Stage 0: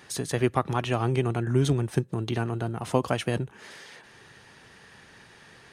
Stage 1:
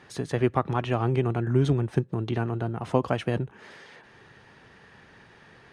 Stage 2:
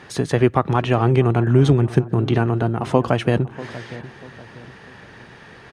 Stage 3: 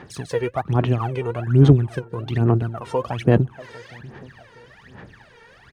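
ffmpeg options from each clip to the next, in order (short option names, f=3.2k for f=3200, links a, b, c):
-af "aemphasis=mode=reproduction:type=75fm"
-filter_complex "[0:a]asplit=2[a][b];[b]alimiter=limit=-15.5dB:level=0:latency=1:release=195,volume=1dB[c];[a][c]amix=inputs=2:normalize=0,asplit=2[d][e];[e]adelay=641,lowpass=f=1.2k:p=1,volume=-16dB,asplit=2[f][g];[g]adelay=641,lowpass=f=1.2k:p=1,volume=0.42,asplit=2[h][i];[i]adelay=641,lowpass=f=1.2k:p=1,volume=0.42,asplit=2[j][k];[k]adelay=641,lowpass=f=1.2k:p=1,volume=0.42[l];[d][f][h][j][l]amix=inputs=5:normalize=0,volume=3dB"
-af "aphaser=in_gain=1:out_gain=1:delay=2.2:decay=0.79:speed=1.2:type=sinusoidal,volume=-9.5dB"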